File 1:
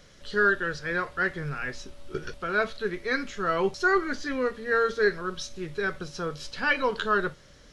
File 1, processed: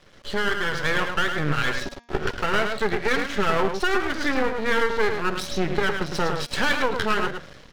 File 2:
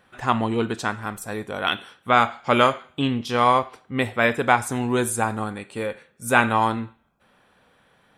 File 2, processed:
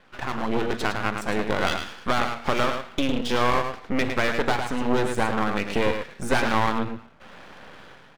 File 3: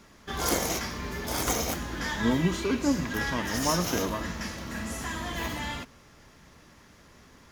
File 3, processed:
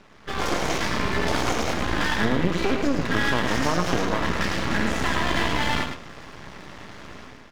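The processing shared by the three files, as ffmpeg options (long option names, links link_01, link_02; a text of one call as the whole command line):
ffmpeg -i in.wav -af "lowshelf=frequency=80:gain=-7,aeval=exprs='0.891*sin(PI/2*2.24*val(0)/0.891)':channel_layout=same,acompressor=threshold=-23dB:ratio=6,lowpass=3700,dynaudnorm=framelen=110:gausssize=7:maxgain=11.5dB,aecho=1:1:107:0.473,aeval=exprs='max(val(0),0)':channel_layout=same,bandreject=frequency=236.2:width_type=h:width=4,bandreject=frequency=472.4:width_type=h:width=4,bandreject=frequency=708.6:width_type=h:width=4,bandreject=frequency=944.8:width_type=h:width=4,bandreject=frequency=1181:width_type=h:width=4,bandreject=frequency=1417.2:width_type=h:width=4,bandreject=frequency=1653.4:width_type=h:width=4,bandreject=frequency=1889.6:width_type=h:width=4,bandreject=frequency=2125.8:width_type=h:width=4,bandreject=frequency=2362:width_type=h:width=4,bandreject=frequency=2598.2:width_type=h:width=4,bandreject=frequency=2834.4:width_type=h:width=4,bandreject=frequency=3070.6:width_type=h:width=4,bandreject=frequency=3306.8:width_type=h:width=4,bandreject=frequency=3543:width_type=h:width=4,bandreject=frequency=3779.2:width_type=h:width=4,bandreject=frequency=4015.4:width_type=h:width=4,bandreject=frequency=4251.6:width_type=h:width=4,bandreject=frequency=4487.8:width_type=h:width=4,bandreject=frequency=4724:width_type=h:width=4,bandreject=frequency=4960.2:width_type=h:width=4,bandreject=frequency=5196.4:width_type=h:width=4,bandreject=frequency=5432.6:width_type=h:width=4,bandreject=frequency=5668.8:width_type=h:width=4,bandreject=frequency=5905:width_type=h:width=4,bandreject=frequency=6141.2:width_type=h:width=4,bandreject=frequency=6377.4:width_type=h:width=4,bandreject=frequency=6613.6:width_type=h:width=4,bandreject=frequency=6849.8:width_type=h:width=4,volume=-4dB" out.wav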